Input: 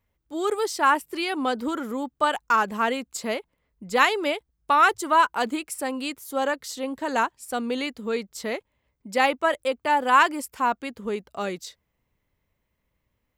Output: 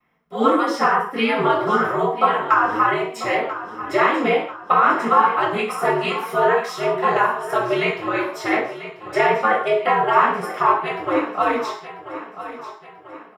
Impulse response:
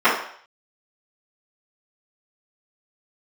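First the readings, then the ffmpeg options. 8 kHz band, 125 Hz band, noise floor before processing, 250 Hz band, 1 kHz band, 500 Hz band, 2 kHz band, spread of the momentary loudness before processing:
−6.0 dB, can't be measured, −77 dBFS, +4.5 dB, +5.5 dB, +7.5 dB, +4.0 dB, 13 LU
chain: -filter_complex "[0:a]equalizer=frequency=220:width_type=o:width=2.2:gain=-5,aeval=exprs='val(0)*sin(2*PI*110*n/s)':channel_layout=same,acrossover=split=350[link_01][link_02];[link_02]acompressor=threshold=-33dB:ratio=6[link_03];[link_01][link_03]amix=inputs=2:normalize=0,aecho=1:1:990|1980|2970|3960:0.211|0.0972|0.0447|0.0206[link_04];[1:a]atrim=start_sample=2205,afade=type=out:start_time=0.25:duration=0.01,atrim=end_sample=11466[link_05];[link_04][link_05]afir=irnorm=-1:irlink=0,volume=-6dB"

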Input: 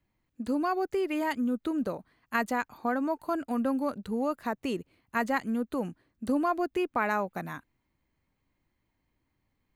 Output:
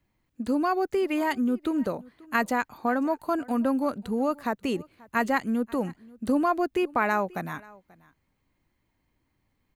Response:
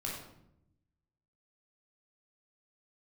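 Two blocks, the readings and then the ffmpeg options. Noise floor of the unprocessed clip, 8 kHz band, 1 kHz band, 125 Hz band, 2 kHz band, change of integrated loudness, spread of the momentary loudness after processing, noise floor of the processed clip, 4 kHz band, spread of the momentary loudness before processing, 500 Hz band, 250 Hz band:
−79 dBFS, +3.5 dB, +3.5 dB, +3.5 dB, +3.5 dB, +3.5 dB, 8 LU, −75 dBFS, +3.5 dB, 8 LU, +3.5 dB, +3.5 dB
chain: -af "aecho=1:1:535:0.0668,volume=3.5dB"

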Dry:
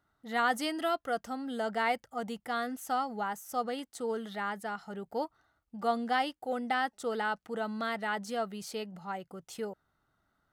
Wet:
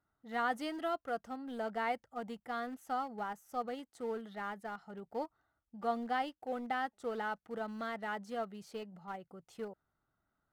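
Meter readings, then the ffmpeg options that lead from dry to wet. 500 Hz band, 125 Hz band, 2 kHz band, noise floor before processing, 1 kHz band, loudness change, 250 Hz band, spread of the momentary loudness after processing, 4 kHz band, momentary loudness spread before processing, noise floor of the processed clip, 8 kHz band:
−5.0 dB, can't be measured, −6.5 dB, −79 dBFS, −5.0 dB, −5.5 dB, −5.0 dB, 10 LU, −9.5 dB, 10 LU, below −85 dBFS, below −10 dB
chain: -filter_complex "[0:a]asplit=2[link_01][link_02];[link_02]aeval=exprs='val(0)*gte(abs(val(0)),0.0224)':channel_layout=same,volume=-10dB[link_03];[link_01][link_03]amix=inputs=2:normalize=0,highshelf=frequency=3000:gain=-10,volume=-6.5dB"

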